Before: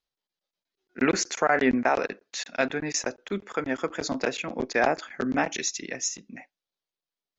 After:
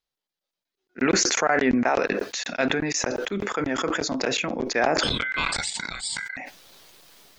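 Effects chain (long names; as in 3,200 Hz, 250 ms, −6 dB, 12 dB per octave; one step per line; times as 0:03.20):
0:05.03–0:06.37: ring modulation 1,800 Hz
level that may fall only so fast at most 20 dB per second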